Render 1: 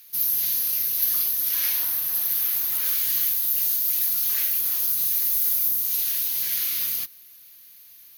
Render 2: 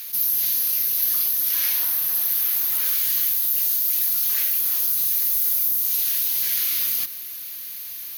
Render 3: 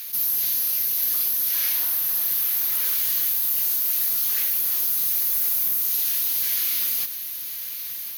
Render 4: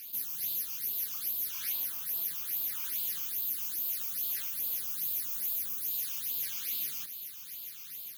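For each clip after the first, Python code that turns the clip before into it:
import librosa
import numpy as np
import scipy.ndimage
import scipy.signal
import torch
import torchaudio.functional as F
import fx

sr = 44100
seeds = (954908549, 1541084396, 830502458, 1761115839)

y1 = fx.low_shelf(x, sr, hz=68.0, db=-12.0)
y1 = fx.env_flatten(y1, sr, amount_pct=50)
y2 = 10.0 ** (-15.0 / 20.0) * np.tanh(y1 / 10.0 ** (-15.0 / 20.0))
y2 = y2 + 10.0 ** (-12.0 / 20.0) * np.pad(y2, (int(1062 * sr / 1000.0), 0))[:len(y2)]
y3 = fx.phaser_stages(y2, sr, stages=8, low_hz=530.0, high_hz=1900.0, hz=2.4, feedback_pct=5)
y3 = F.gain(torch.from_numpy(y3), -8.0).numpy()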